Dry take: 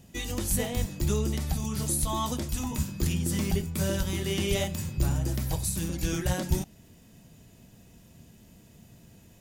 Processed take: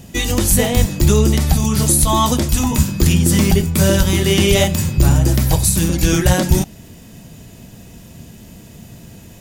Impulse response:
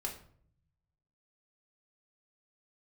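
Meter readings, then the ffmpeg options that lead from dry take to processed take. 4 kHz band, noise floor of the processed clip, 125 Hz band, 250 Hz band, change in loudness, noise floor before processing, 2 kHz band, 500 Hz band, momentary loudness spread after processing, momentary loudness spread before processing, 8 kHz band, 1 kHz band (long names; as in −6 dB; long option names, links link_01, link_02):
+15.0 dB, −40 dBFS, +14.5 dB, +15.0 dB, +14.5 dB, −55 dBFS, +15.0 dB, +14.5 dB, 4 LU, 4 LU, +14.5 dB, +15.0 dB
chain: -af "alimiter=level_in=16dB:limit=-1dB:release=50:level=0:latency=1,volume=-1dB"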